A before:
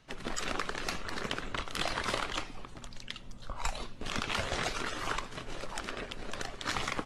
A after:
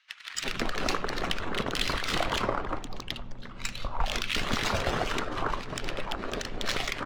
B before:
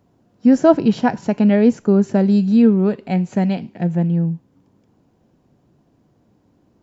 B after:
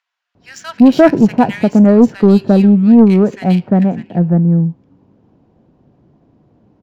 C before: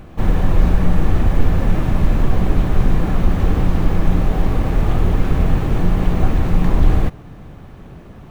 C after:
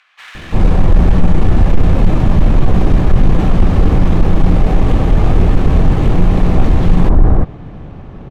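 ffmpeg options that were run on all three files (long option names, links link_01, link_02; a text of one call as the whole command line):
ffmpeg -i in.wav -filter_complex "[0:a]acrossover=split=1600[link_01][link_02];[link_01]adelay=350[link_03];[link_03][link_02]amix=inputs=2:normalize=0,aeval=exprs='0.891*sin(PI/2*1.41*val(0)/0.891)':channel_layout=same,adynamicsmooth=sensitivity=6.5:basefreq=3200" out.wav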